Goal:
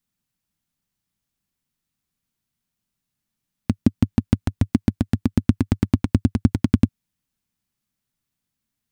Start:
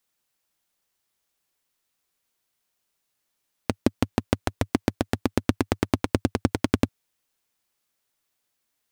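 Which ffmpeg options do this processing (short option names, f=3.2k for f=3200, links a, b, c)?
-af "lowshelf=f=300:t=q:w=1.5:g=13,volume=-5.5dB"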